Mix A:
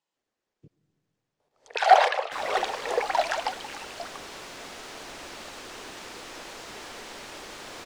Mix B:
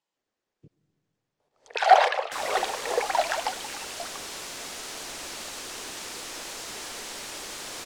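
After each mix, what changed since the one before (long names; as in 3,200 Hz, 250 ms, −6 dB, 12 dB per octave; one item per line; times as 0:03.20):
second sound: add parametric band 11,000 Hz +11.5 dB 2.1 octaves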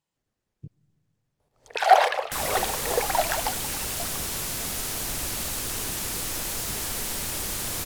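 speech: send −6.0 dB
second sound +3.0 dB
master: remove three-way crossover with the lows and the highs turned down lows −17 dB, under 270 Hz, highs −17 dB, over 8,000 Hz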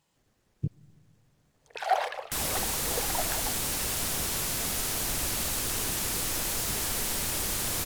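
speech +11.5 dB
first sound −10.0 dB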